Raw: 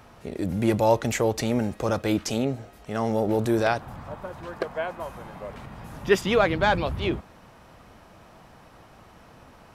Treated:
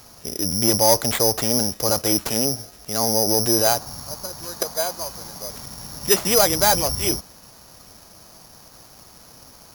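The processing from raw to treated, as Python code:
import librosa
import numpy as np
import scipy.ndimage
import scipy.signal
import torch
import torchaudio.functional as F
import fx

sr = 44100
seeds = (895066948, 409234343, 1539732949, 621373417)

p1 = (np.kron(x[::8], np.eye(8)[0]) * 8)[:len(x)]
p2 = fx.dynamic_eq(p1, sr, hz=740.0, q=1.0, threshold_db=-32.0, ratio=4.0, max_db=5)
p3 = fx.fold_sine(p2, sr, drive_db=8, ceiling_db=11.0)
p4 = p2 + (p3 * 10.0 ** (-8.0 / 20.0))
p5 = fx.high_shelf(p4, sr, hz=4400.0, db=-7.0)
y = p5 * 10.0 ** (-8.5 / 20.0)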